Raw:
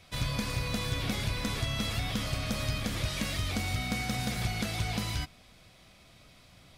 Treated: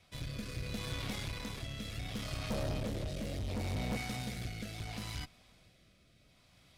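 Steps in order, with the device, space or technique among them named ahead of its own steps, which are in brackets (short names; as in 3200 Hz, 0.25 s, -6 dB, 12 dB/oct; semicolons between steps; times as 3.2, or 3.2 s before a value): 2.5–3.97 resonant low shelf 740 Hz +8 dB, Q 3; overdriven rotary cabinet (tube stage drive 30 dB, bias 0.65; rotary speaker horn 0.7 Hz); gain -2 dB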